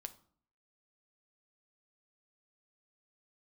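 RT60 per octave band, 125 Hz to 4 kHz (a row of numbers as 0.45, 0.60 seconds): 0.65, 0.65, 0.55, 0.55, 0.40, 0.35 seconds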